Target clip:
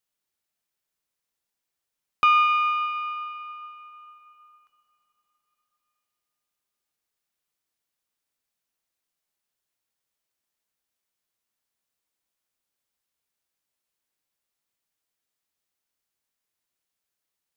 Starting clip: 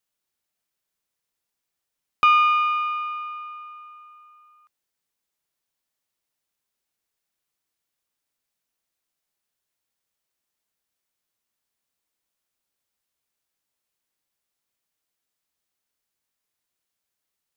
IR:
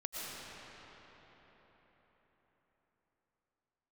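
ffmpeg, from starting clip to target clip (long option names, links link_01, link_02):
-filter_complex "[0:a]asplit=2[link_01][link_02];[1:a]atrim=start_sample=2205,lowshelf=frequency=270:gain=-6.5[link_03];[link_02][link_03]afir=irnorm=-1:irlink=0,volume=-13dB[link_04];[link_01][link_04]amix=inputs=2:normalize=0,volume=-3dB"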